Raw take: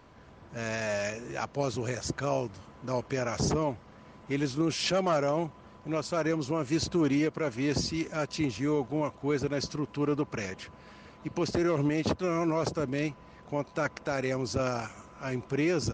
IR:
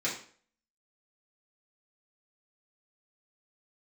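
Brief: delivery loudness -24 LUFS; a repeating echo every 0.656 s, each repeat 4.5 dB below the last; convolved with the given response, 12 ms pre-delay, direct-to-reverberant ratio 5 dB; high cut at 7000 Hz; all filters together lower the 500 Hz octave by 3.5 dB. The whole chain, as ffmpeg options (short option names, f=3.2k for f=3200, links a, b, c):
-filter_complex "[0:a]lowpass=7k,equalizer=f=500:t=o:g=-4.5,aecho=1:1:656|1312|1968|2624|3280|3936|4592|5248|5904:0.596|0.357|0.214|0.129|0.0772|0.0463|0.0278|0.0167|0.01,asplit=2[a][b];[1:a]atrim=start_sample=2205,adelay=12[c];[b][c]afir=irnorm=-1:irlink=0,volume=-12dB[d];[a][d]amix=inputs=2:normalize=0,volume=6dB"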